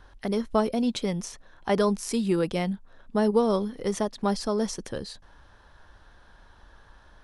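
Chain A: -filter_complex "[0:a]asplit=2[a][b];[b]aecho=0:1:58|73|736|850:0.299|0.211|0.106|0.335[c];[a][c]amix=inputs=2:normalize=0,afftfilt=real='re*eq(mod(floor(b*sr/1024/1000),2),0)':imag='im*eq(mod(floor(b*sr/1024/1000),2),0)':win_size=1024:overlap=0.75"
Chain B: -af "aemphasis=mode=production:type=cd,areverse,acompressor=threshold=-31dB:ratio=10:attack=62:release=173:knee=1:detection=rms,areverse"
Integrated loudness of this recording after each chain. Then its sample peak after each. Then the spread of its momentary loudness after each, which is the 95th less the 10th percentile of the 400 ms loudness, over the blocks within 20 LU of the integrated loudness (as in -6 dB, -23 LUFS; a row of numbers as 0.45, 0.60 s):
-27.0, -33.5 LUFS; -10.0, -15.0 dBFS; 13, 6 LU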